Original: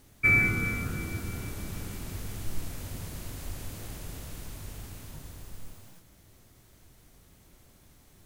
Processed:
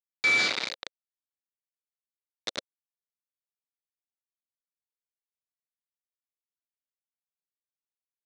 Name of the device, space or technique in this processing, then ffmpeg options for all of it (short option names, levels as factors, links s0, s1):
hand-held game console: -af "acrusher=bits=3:mix=0:aa=0.000001,highpass=440,equalizer=f=530:t=q:w=4:g=4,equalizer=f=2600:t=q:w=4:g=-4,equalizer=f=3800:t=q:w=4:g=9,lowpass=f=5600:w=0.5412,lowpass=f=5600:w=1.3066"